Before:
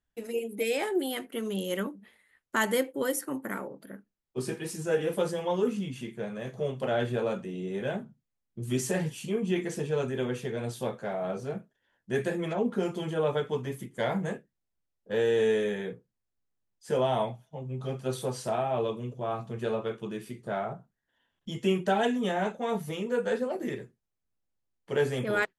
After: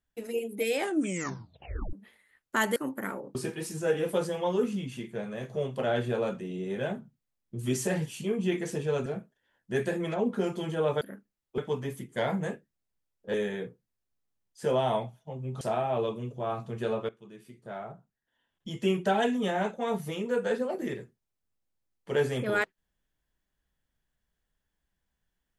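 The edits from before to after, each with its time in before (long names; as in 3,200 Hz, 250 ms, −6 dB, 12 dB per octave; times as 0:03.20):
0:00.80: tape stop 1.13 s
0:02.76–0:03.23: remove
0:03.82–0:04.39: move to 0:13.40
0:10.10–0:11.45: remove
0:15.16–0:15.60: remove
0:17.87–0:18.42: remove
0:19.90–0:21.84: fade in, from −17.5 dB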